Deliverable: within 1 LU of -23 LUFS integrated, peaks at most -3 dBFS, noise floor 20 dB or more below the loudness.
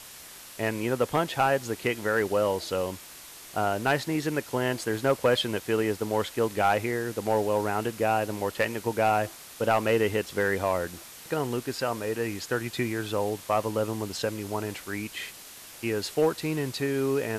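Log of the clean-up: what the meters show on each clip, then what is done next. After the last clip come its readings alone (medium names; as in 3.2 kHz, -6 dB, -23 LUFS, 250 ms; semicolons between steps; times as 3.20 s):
clipped samples 0.3%; clipping level -15.0 dBFS; noise floor -46 dBFS; noise floor target -48 dBFS; loudness -28.0 LUFS; peak level -15.0 dBFS; loudness target -23.0 LUFS
-> clip repair -15 dBFS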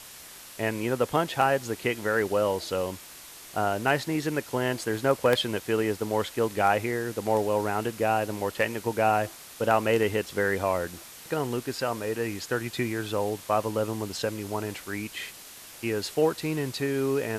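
clipped samples 0.0%; noise floor -46 dBFS; noise floor target -48 dBFS
-> noise print and reduce 6 dB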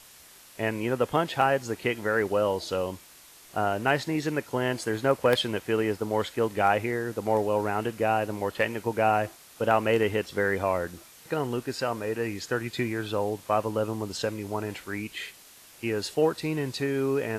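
noise floor -52 dBFS; loudness -28.0 LUFS; peak level -6.5 dBFS; loudness target -23.0 LUFS
-> trim +5 dB; peak limiter -3 dBFS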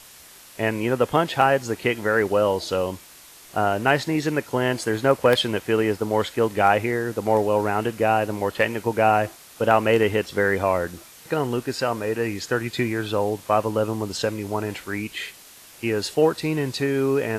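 loudness -23.0 LUFS; peak level -3.0 dBFS; noise floor -47 dBFS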